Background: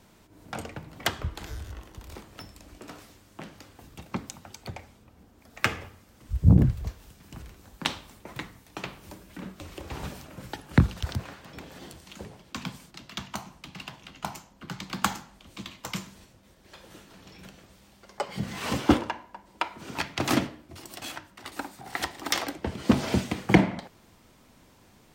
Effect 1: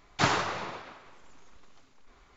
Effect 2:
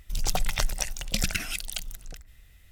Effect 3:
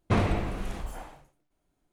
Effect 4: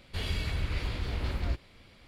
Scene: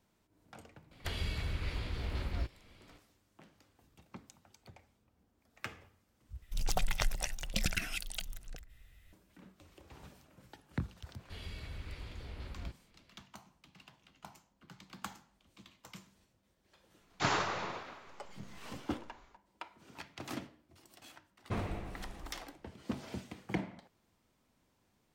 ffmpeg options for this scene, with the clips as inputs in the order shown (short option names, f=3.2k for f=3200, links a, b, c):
-filter_complex "[4:a]asplit=2[a][b];[0:a]volume=-17.5dB[c];[2:a]bass=f=250:g=-1,treble=f=4k:g=-5[d];[1:a]dynaudnorm=f=160:g=3:m=10.5dB[e];[c]asplit=2[f][g];[f]atrim=end=6.424[h];[d]atrim=end=2.71,asetpts=PTS-STARTPTS,volume=-4.5dB[i];[g]atrim=start=9.126[j];[a]atrim=end=2.07,asetpts=PTS-STARTPTS,volume=-5dB,afade=t=in:d=0.004:c=hsin,afade=t=out:st=2.066:d=0.004:c=hsin,adelay=910[k];[b]atrim=end=2.07,asetpts=PTS-STARTPTS,volume=-13dB,afade=t=in:d=0.004:c=hsin,afade=t=out:st=2.066:d=0.004:c=hsin,adelay=11160[l];[e]atrim=end=2.36,asetpts=PTS-STARTPTS,volume=-12.5dB,afade=t=in:d=0.004:c=hsin,afade=t=out:st=2.356:d=0.004:c=hsin,adelay=17010[m];[3:a]atrim=end=1.92,asetpts=PTS-STARTPTS,volume=-12.5dB,afade=t=in:d=0.004:c=hsin,afade=t=out:st=1.916:d=0.004:c=hsin,adelay=21400[n];[h][i]acrossfade=d=0.004:c1=hsin:c2=hsin[o];[o][j]acrossfade=d=0.004:c1=hsin:c2=hsin[p];[p][k][l][m][n]amix=inputs=5:normalize=0"